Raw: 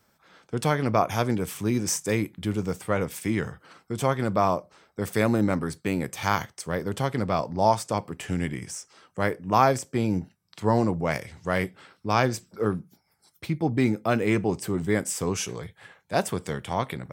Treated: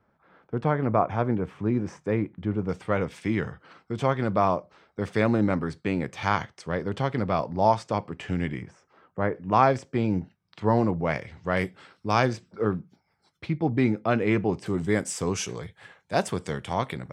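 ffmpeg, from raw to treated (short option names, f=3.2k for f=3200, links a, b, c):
-af "asetnsamples=n=441:p=0,asendcmd='2.69 lowpass f 3900;8.62 lowpass f 1500;9.36 lowpass f 3500;11.57 lowpass f 7800;12.33 lowpass f 3600;14.66 lowpass f 8100',lowpass=1.5k"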